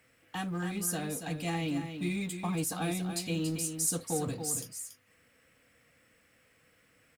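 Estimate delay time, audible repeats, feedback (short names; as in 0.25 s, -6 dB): 0.281 s, 1, no steady repeat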